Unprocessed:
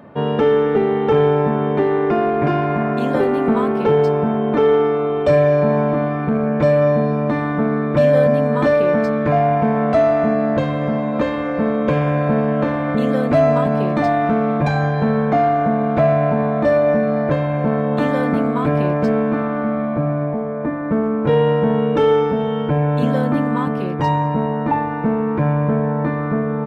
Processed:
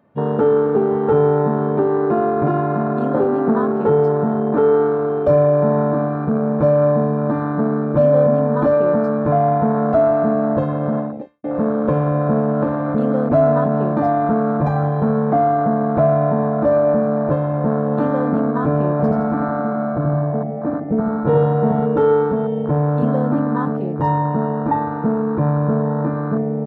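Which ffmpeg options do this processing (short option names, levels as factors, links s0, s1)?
-filter_complex "[0:a]asettb=1/sr,asplit=3[s0][s1][s2];[s0]atrim=end=18.914[s3];[s1]atrim=start=18.91:end=21.86,asetpts=PTS-STARTPTS,afade=t=in:d=0.004:c=qsin,afade=t=out:st=2.946:d=0.004:c=qsin,aecho=1:1:83|166|249|332|415|498|581:0.668|0.348|0.181|0.094|0.0489|0.0254|0.0132,atrim=end_sample=130095[s4];[s2]atrim=start=21.856[s5];[s3][s4]acrossfade=d=0.004:c1=hsin:c2=qsin[s6];[s6][s5]acrossfade=d=0.004:c1=qsin:c2=hsin,asplit=2[s7][s8];[s7]atrim=end=11.44,asetpts=PTS-STARTPTS,afade=t=out:st=10.99:d=0.45:c=qua[s9];[s8]atrim=start=11.44,asetpts=PTS-STARTPTS,afade=t=in:d=0.004:c=hsin[s10];[s9][s10]concat=n=2:v=0:a=1,afwtdn=0.0891"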